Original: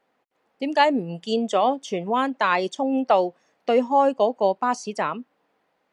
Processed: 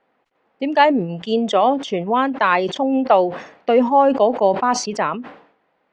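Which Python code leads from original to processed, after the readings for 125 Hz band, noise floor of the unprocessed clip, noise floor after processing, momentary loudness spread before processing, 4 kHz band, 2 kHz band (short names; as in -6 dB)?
+6.0 dB, -71 dBFS, -67 dBFS, 9 LU, +4.0 dB, +4.5 dB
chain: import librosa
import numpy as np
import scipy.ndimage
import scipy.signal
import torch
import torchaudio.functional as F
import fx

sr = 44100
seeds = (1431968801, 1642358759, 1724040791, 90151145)

y = scipy.signal.sosfilt(scipy.signal.butter(2, 3200.0, 'lowpass', fs=sr, output='sos'), x)
y = fx.sustainer(y, sr, db_per_s=100.0)
y = y * librosa.db_to_amplitude(4.5)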